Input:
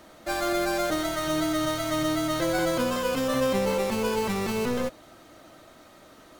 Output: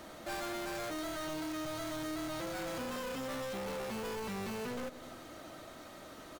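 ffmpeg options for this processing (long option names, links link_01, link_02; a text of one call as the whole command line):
ffmpeg -i in.wav -af "volume=31dB,asoftclip=hard,volume=-31dB,aecho=1:1:93|186|279|372|465:0.126|0.0718|0.0409|0.0233|0.0133,alimiter=level_in=13dB:limit=-24dB:level=0:latency=1:release=157,volume=-13dB,volume=1dB" out.wav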